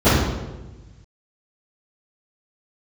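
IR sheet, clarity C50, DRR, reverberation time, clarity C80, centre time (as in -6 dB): -1.0 dB, -21.0 dB, 1.2 s, 2.5 dB, 82 ms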